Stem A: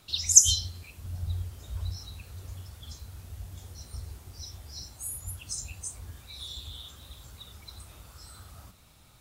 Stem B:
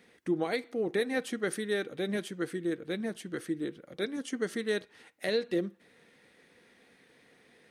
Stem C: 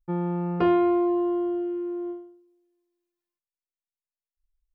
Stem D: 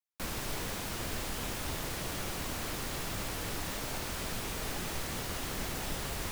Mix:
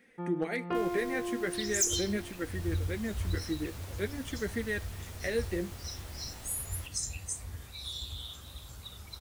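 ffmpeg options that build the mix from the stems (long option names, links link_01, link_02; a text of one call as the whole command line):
ffmpeg -i stem1.wav -i stem2.wav -i stem3.wav -i stem4.wav -filter_complex "[0:a]dynaudnorm=framelen=390:gausssize=3:maxgain=9dB,adelay=1450,volume=-8dB[link_01];[1:a]equalizer=frequency=1000:width_type=o:width=1:gain=-6,equalizer=frequency=2000:width_type=o:width=1:gain=6,equalizer=frequency=4000:width_type=o:width=1:gain=-8,flanger=delay=3.7:depth=9.1:regen=32:speed=0.42:shape=sinusoidal,volume=1.5dB,asplit=2[link_02][link_03];[2:a]equalizer=frequency=2200:width=0.35:gain=6,adelay=100,volume=-11dB[link_04];[3:a]adelay=550,volume=-12.5dB[link_05];[link_03]apad=whole_len=213579[link_06];[link_04][link_06]sidechaincompress=threshold=-34dB:ratio=8:attack=16:release=288[link_07];[link_01][link_02][link_07][link_05]amix=inputs=4:normalize=0,asoftclip=type=hard:threshold=-22dB" out.wav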